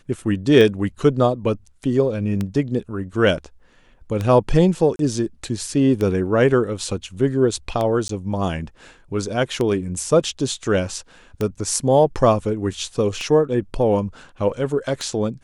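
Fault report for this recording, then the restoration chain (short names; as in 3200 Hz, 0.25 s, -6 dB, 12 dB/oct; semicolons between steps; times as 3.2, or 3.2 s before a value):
tick 33 1/3 rpm
4.96–4.99 gap 32 ms
8.08–8.09 gap 13 ms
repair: de-click; interpolate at 4.96, 32 ms; interpolate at 8.08, 13 ms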